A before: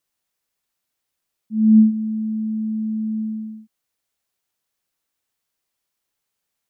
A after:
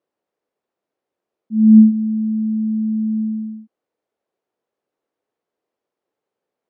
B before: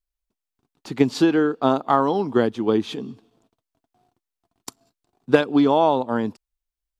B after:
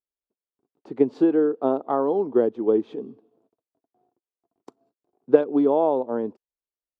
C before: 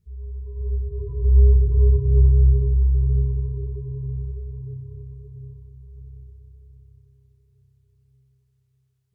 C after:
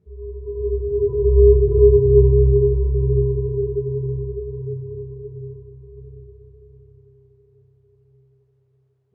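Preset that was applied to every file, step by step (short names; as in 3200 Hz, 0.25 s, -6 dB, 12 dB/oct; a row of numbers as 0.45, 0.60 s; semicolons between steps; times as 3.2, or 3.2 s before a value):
band-pass 440 Hz, Q 1.7; normalise peaks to -1.5 dBFS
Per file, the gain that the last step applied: +13.0, +1.5, +19.0 dB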